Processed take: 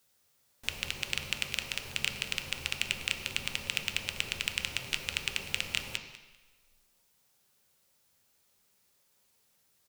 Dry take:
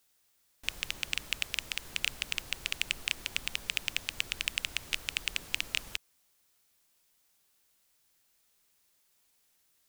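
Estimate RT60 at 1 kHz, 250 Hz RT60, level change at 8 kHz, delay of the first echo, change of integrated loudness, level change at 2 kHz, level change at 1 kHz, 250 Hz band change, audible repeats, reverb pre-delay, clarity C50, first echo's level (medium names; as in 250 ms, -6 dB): 1.2 s, 1.0 s, +0.5 dB, 197 ms, +0.5 dB, +0.5 dB, +3.0 dB, +5.0 dB, 2, 3 ms, 6.0 dB, -16.0 dB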